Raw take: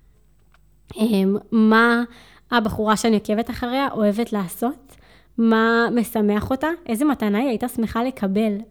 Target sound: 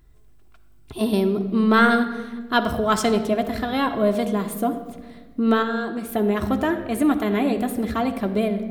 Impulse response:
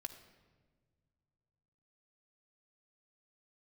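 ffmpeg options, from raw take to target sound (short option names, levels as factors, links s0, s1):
-filter_complex "[0:a]asettb=1/sr,asplit=3[s0][s1][s2];[s0]atrim=end=5.624[s3];[s1]atrim=start=5.62:end=6.09,asetpts=PTS-STARTPTS,afade=t=in:d=0.004:c=qsin,afade=t=out:st=0.466:d=0.004:c=qsin,acompressor=threshold=0.0631:ratio=6[s4];[s2]atrim=start=6.086[s5];[s3][s4]acrossfade=d=0.004:c1=hsin:c2=qsin[s6];[s6][s5]acrossfade=d=0.004:c1=qsin:c2=hsin[s7];[1:a]atrim=start_sample=2205[s8];[s7][s8]afir=irnorm=-1:irlink=0,volume=1.41"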